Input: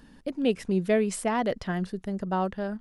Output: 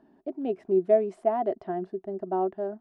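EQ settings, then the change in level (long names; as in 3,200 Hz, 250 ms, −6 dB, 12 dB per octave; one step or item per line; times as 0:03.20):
pair of resonant band-passes 500 Hz, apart 0.79 octaves
+7.5 dB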